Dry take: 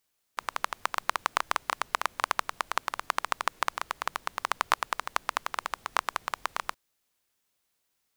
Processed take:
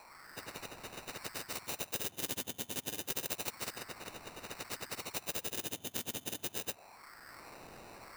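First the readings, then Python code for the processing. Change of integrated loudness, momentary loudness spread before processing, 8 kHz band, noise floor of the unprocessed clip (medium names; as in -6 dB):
-8.0 dB, 5 LU, +1.0 dB, -78 dBFS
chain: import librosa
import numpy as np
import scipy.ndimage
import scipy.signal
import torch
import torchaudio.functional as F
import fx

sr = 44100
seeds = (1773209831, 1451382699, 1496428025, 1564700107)

p1 = fx.octave_mirror(x, sr, pivot_hz=720.0)
p2 = fx.quant_dither(p1, sr, seeds[0], bits=8, dither='triangular')
p3 = p1 + (p2 * librosa.db_to_amplitude(-8.5))
p4 = fx.wah_lfo(p3, sr, hz=0.29, low_hz=240.0, high_hz=2800.0, q=5.1)
p5 = fx.sample_hold(p4, sr, seeds[1], rate_hz=3300.0, jitter_pct=0)
p6 = fx.spectral_comp(p5, sr, ratio=4.0)
y = p6 * librosa.db_to_amplitude(7.5)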